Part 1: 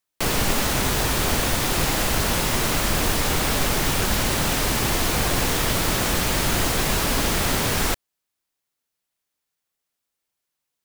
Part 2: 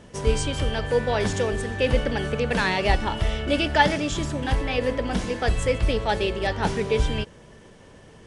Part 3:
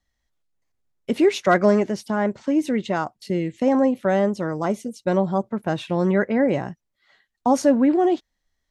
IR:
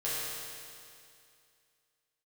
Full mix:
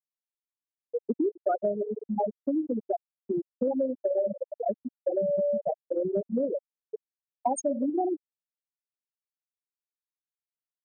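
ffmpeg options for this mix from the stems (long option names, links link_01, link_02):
-filter_complex "[0:a]bandreject=frequency=57.88:width_type=h:width=4,bandreject=frequency=115.76:width_type=h:width=4,bandreject=frequency=173.64:width_type=h:width=4,bandreject=frequency=231.52:width_type=h:width=4,bandreject=frequency=289.4:width_type=h:width=4,bandreject=frequency=347.28:width_type=h:width=4,bandreject=frequency=405.16:width_type=h:width=4,bandreject=frequency=463.04:width_type=h:width=4,adelay=600,volume=-14dB,asplit=2[link_01][link_02];[link_02]volume=-19dB[link_03];[1:a]volume=-9dB,asplit=2[link_04][link_05];[link_05]volume=-14.5dB[link_06];[2:a]aexciter=amount=14.4:drive=5.8:freq=6700,volume=2.5dB,asplit=2[link_07][link_08];[link_08]volume=-15dB[link_09];[link_04][link_07]amix=inputs=2:normalize=0,highpass=170,acompressor=threshold=-30dB:ratio=1.5,volume=0dB[link_10];[3:a]atrim=start_sample=2205[link_11];[link_03][link_06][link_09]amix=inputs=3:normalize=0[link_12];[link_12][link_11]afir=irnorm=-1:irlink=0[link_13];[link_01][link_10][link_13]amix=inputs=3:normalize=0,afftfilt=real='re*gte(hypot(re,im),0.562)':imag='im*gte(hypot(re,im),0.562)':win_size=1024:overlap=0.75,equalizer=frequency=720:width=1.1:gain=8.5,acompressor=threshold=-25dB:ratio=6"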